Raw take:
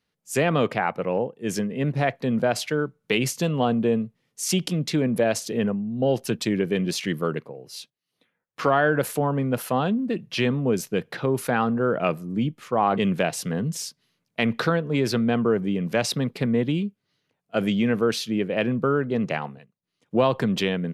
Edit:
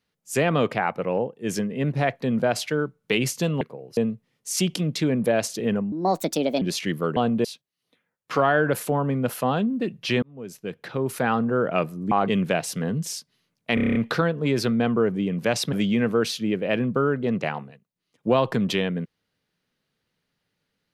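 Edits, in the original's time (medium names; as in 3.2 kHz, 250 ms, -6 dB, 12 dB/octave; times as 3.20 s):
3.61–3.89 s: swap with 7.37–7.73 s
5.84–6.82 s: speed 141%
10.51–11.57 s: fade in
12.40–12.81 s: delete
14.44 s: stutter 0.03 s, 8 plays
16.21–17.60 s: delete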